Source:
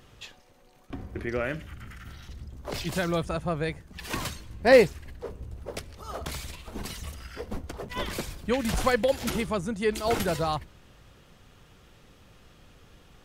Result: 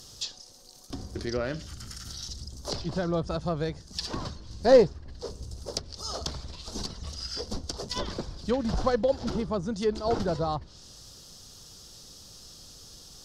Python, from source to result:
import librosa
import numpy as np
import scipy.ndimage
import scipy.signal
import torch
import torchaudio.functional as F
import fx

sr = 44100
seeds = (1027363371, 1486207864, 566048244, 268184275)

y = fx.tracing_dist(x, sr, depth_ms=0.09)
y = fx.high_shelf_res(y, sr, hz=3400.0, db=14.0, q=3.0)
y = fx.env_lowpass_down(y, sr, base_hz=1400.0, full_db=-22.5)